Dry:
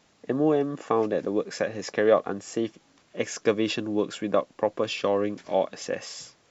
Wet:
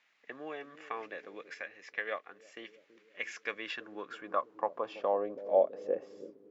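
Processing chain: bucket-brigade echo 328 ms, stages 1024, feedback 62%, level -13 dB; band-pass sweep 2.1 kHz -> 380 Hz, 3.43–6.25 s; 1.54–2.57 s: upward expansion 1.5:1, over -43 dBFS

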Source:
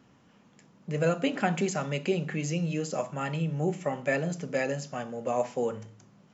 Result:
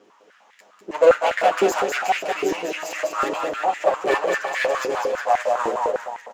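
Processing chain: comb filter that takes the minimum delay 9.6 ms; bouncing-ball echo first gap 200 ms, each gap 0.8×, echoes 5; step-sequenced high-pass 9.9 Hz 380–1900 Hz; trim +5 dB

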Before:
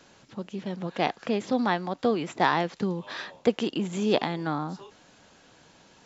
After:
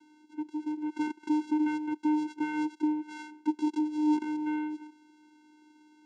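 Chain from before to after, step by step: peak limiter -16.5 dBFS, peak gain reduction 9 dB; 0.89–2.92 s: small resonant body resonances 2.1/3.1 kHz, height 12 dB; vocoder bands 4, square 304 Hz

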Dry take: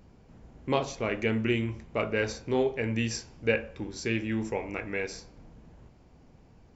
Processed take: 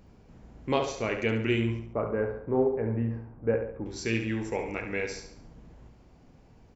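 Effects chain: 1.79–3.86 s: low-pass 1.3 kHz 24 dB/octave; feedback delay 70 ms, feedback 42%, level -8 dB

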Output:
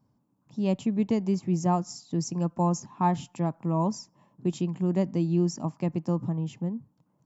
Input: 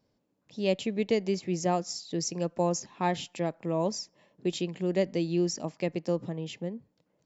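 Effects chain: ten-band graphic EQ 125 Hz +10 dB, 250 Hz +5 dB, 500 Hz -9 dB, 1 kHz +10 dB, 2 kHz -8 dB, 4 kHz -9 dB

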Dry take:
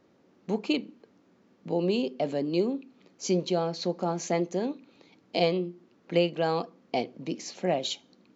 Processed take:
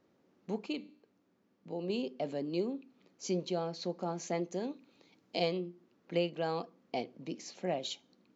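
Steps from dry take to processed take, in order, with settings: 0.66–1.90 s: feedback comb 99 Hz, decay 0.6 s, harmonics all, mix 40%; 4.52–5.61 s: treble shelf 5.3 kHz +6.5 dB; trim -7.5 dB

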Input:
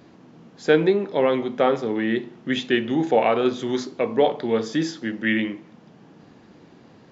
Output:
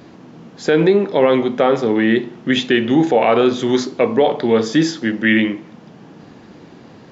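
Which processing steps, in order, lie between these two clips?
peak limiter -12.5 dBFS, peak gain reduction 8.5 dB; trim +8.5 dB

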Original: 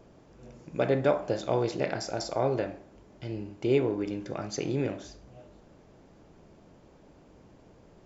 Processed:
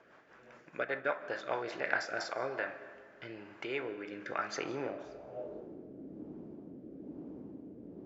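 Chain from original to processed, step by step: 0.62–1.21 s: transient shaper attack +2 dB, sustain -7 dB; in parallel at +1 dB: compression, threshold -41 dBFS, peak gain reduction 21.5 dB; on the sum: rotary cabinet horn 5 Hz, later 1.1 Hz, at 1.74 s; gain riding 0.5 s; band-pass sweep 1.6 kHz -> 280 Hz, 4.49–5.91 s; on a send at -15 dB: reverberation RT60 2.3 s, pre-delay 110 ms; on the sum: trim +8.5 dB

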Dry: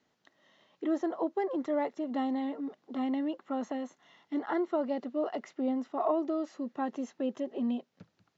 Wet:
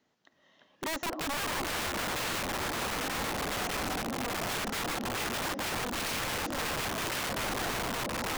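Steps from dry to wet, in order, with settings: ever faster or slower copies 311 ms, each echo -2 st, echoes 2; delay with an opening low-pass 296 ms, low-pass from 200 Hz, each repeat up 2 oct, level -3 dB; integer overflow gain 28.5 dB

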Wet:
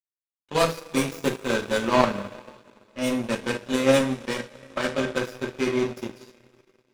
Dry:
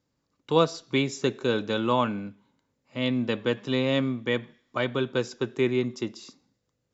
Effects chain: tracing distortion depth 0.17 ms; two-slope reverb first 0.33 s, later 4.9 s, from -19 dB, DRR -4.5 dB; in parallel at -3 dB: hard clipper -18 dBFS, distortion -10 dB; on the sum: small resonant body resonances 600/1600/2500 Hz, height 8 dB, ringing for 40 ms; power-law waveshaper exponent 2

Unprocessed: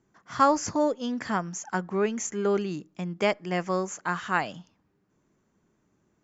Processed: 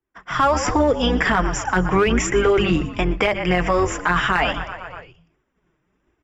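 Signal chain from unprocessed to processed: octave divider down 2 oct, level -3 dB; treble shelf 2 kHz +11.5 dB; hum notches 50/100/150/200 Hz; expander -50 dBFS; flange 1.3 Hz, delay 2.3 ms, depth 4.4 ms, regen -12%; Savitzky-Golay filter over 25 samples; on a send: frequency-shifting echo 120 ms, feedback 61%, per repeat -42 Hz, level -20 dB; on the sum: level rider gain up to 13.5 dB; peaking EQ 220 Hz -7 dB 0.25 oct; in parallel at -7 dB: hard clipper -15 dBFS, distortion -9 dB; on the sum: loudness maximiser +12.5 dB; three bands compressed up and down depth 40%; trim -8 dB

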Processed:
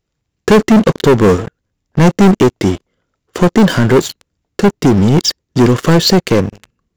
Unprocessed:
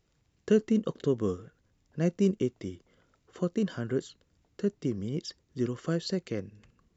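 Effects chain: waveshaping leveller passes 5; trim +9 dB

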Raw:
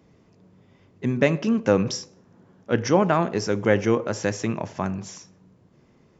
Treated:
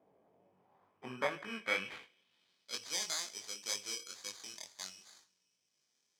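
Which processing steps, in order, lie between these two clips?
time-frequency box 3.93–4.31 s, 520–1100 Hz -13 dB; sample-and-hold 16×; band-pass sweep 670 Hz -> 5.8 kHz, 0.37–2.96 s; chorus 2.1 Hz, delay 19.5 ms, depth 4.3 ms; trim +1 dB

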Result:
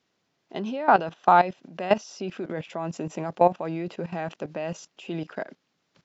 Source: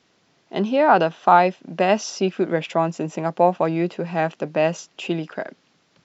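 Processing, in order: level held to a coarse grid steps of 15 dB

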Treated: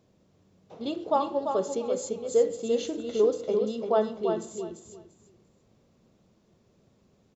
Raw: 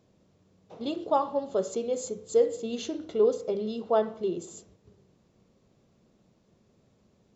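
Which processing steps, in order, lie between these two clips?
feedback delay 343 ms, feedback 21%, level -6 dB

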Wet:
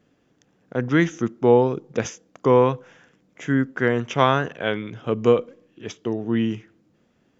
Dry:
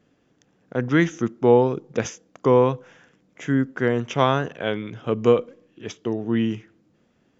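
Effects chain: 2.49–4.94 s: dynamic bell 1.7 kHz, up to +4 dB, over -34 dBFS, Q 0.89

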